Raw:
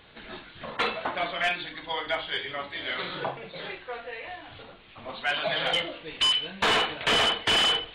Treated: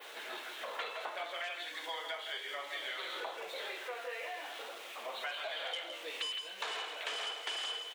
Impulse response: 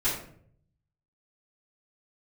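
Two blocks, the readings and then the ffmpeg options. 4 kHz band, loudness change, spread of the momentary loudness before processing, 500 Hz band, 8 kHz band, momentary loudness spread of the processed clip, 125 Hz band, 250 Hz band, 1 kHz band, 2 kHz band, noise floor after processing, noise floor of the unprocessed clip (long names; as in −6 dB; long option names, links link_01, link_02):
−13.0 dB, −13.5 dB, 19 LU, −11.0 dB, −9.5 dB, 6 LU, below −35 dB, −20.0 dB, −11.5 dB, −11.0 dB, −48 dBFS, −50 dBFS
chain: -af "aeval=exprs='val(0)+0.5*0.00708*sgn(val(0))':channel_layout=same,highpass=frequency=410:width=0.5412,highpass=frequency=410:width=1.3066,adynamicequalizer=threshold=0.00794:dfrequency=6800:dqfactor=0.82:tfrequency=6800:tqfactor=0.82:attack=5:release=100:ratio=0.375:range=2.5:mode=boostabove:tftype=bell,acompressor=threshold=-36dB:ratio=6,aecho=1:1:164:0.422,volume=-2.5dB"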